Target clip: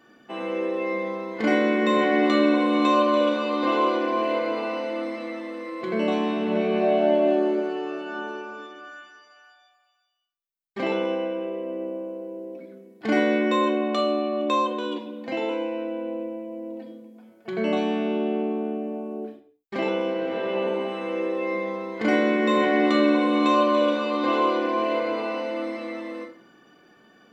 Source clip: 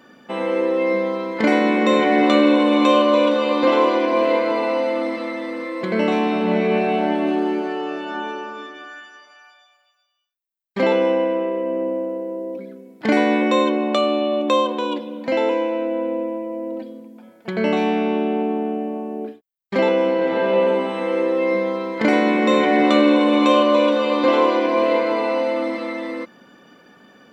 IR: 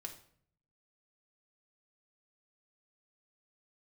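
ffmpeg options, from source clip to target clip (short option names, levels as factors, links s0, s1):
-filter_complex "[0:a]asettb=1/sr,asplit=3[s0][s1][s2];[s0]atrim=end=6.824[s3];[s1]atrim=start=6.82:end=7.6,asetpts=PTS-STARTPTS,afade=t=in:d=0.004:c=qsin,afade=t=out:st=0.776:d=0.004:c=qsin,equalizer=f=600:t=o:w=0.31:g=11[s4];[s2]atrim=start=7.596[s5];[s3][s4]acrossfade=d=0.004:c1=hsin:c2=qsin[s6];[s6][s5]acrossfade=d=0.004:c1=qsin:c2=hsin[s7];[1:a]atrim=start_sample=2205,afade=t=out:st=0.3:d=0.01,atrim=end_sample=13671[s8];[s7][s8]afir=irnorm=-1:irlink=0,volume=0.75"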